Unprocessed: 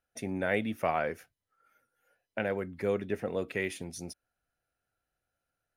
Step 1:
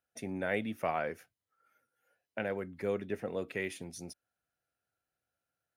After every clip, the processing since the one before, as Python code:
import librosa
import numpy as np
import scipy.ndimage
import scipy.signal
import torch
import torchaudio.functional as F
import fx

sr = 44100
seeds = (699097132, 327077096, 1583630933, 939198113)

y = scipy.signal.sosfilt(scipy.signal.butter(2, 81.0, 'highpass', fs=sr, output='sos'), x)
y = y * librosa.db_to_amplitude(-3.5)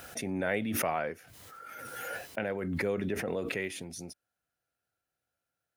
y = fx.pre_swell(x, sr, db_per_s=21.0)
y = y * librosa.db_to_amplitude(1.0)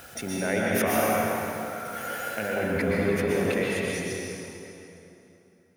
y = fx.rev_plate(x, sr, seeds[0], rt60_s=3.1, hf_ratio=0.75, predelay_ms=105, drr_db=-5.0)
y = y * librosa.db_to_amplitude(1.5)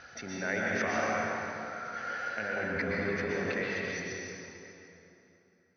y = scipy.signal.sosfilt(scipy.signal.cheby1(6, 9, 6200.0, 'lowpass', fs=sr, output='sos'), x)